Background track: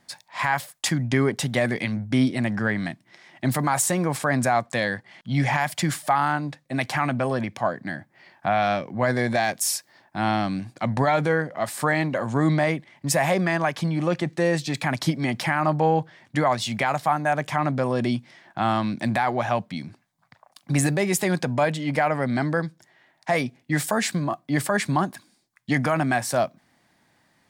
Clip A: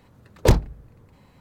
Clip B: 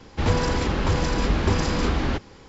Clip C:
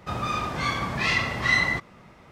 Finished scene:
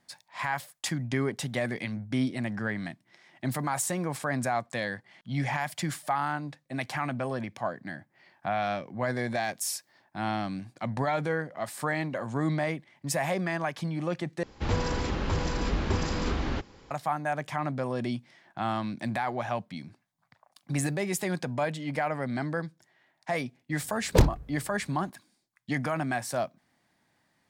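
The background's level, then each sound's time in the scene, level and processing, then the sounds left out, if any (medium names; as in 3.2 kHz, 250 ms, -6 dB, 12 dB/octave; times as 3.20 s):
background track -7.5 dB
14.43 s: replace with B -6.5 dB
23.70 s: add A -4 dB
not used: C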